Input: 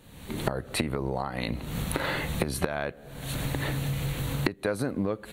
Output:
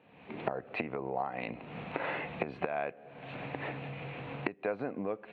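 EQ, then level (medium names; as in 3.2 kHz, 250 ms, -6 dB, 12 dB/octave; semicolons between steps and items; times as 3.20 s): cabinet simulation 180–2700 Hz, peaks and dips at 460 Hz +4 dB, 720 Hz +9 dB, 1 kHz +3 dB, 2.5 kHz +9 dB; -8.0 dB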